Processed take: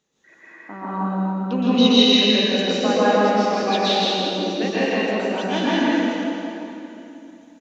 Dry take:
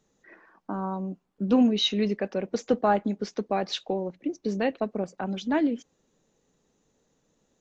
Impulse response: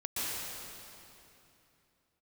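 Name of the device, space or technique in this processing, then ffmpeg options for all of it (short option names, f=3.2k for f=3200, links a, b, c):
stadium PA: -filter_complex "[0:a]highpass=f=130:p=1,equalizer=f=3k:t=o:w=1.8:g=8,aecho=1:1:163.3|221.6:0.794|0.282[a];[1:a]atrim=start_sample=2205[b];[a][b]afir=irnorm=-1:irlink=0,volume=-1dB"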